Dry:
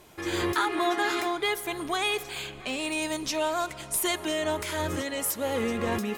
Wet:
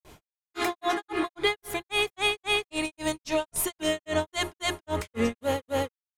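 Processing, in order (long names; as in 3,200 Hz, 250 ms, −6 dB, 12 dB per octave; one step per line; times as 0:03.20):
low-shelf EQ 120 Hz +9.5 dB
mains-hum notches 50/100/150/200/250/300/350 Hz
granular cloud 215 ms, grains 3.7 per second, spray 581 ms, pitch spread up and down by 0 semitones
level +4 dB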